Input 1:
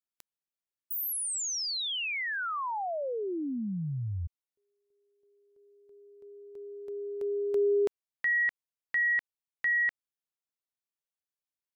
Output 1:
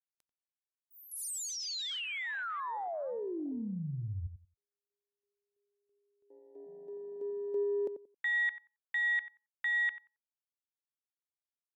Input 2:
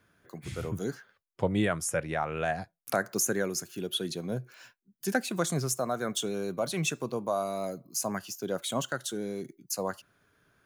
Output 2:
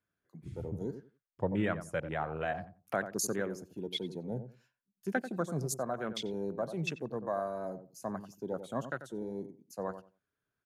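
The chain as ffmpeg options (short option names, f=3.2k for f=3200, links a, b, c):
-filter_complex "[0:a]afwtdn=0.0158,asplit=2[a][b];[b]adelay=90,lowpass=f=1.1k:p=1,volume=-9.5dB,asplit=2[c][d];[d]adelay=90,lowpass=f=1.1k:p=1,volume=0.2,asplit=2[e][f];[f]adelay=90,lowpass=f=1.1k:p=1,volume=0.2[g];[a][c][e][g]amix=inputs=4:normalize=0,aresample=32000,aresample=44100,volume=-4.5dB"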